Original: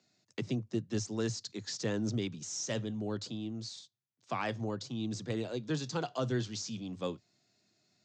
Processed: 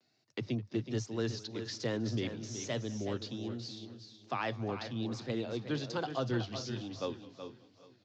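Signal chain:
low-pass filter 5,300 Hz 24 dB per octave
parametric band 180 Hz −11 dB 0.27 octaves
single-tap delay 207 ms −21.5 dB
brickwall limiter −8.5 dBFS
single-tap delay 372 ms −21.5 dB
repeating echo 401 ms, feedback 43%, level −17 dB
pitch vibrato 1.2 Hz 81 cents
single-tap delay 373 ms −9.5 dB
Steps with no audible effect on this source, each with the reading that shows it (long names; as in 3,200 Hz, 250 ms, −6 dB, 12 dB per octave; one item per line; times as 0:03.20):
brickwall limiter −8.5 dBFS: peak of its input −21.5 dBFS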